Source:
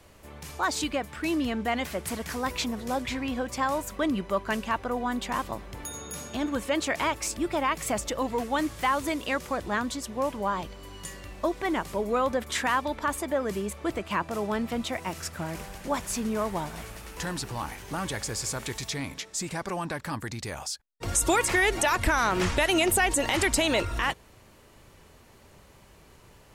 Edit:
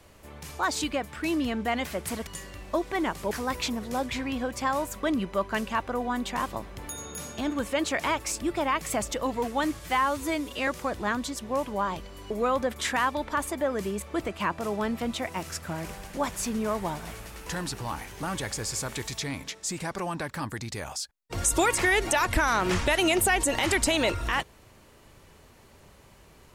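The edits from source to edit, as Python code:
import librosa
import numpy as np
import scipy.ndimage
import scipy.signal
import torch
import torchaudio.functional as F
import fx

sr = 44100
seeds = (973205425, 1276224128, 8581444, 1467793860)

y = fx.edit(x, sr, fx.stretch_span(start_s=8.75, length_s=0.59, factor=1.5),
    fx.move(start_s=10.97, length_s=1.04, to_s=2.27), tone=tone)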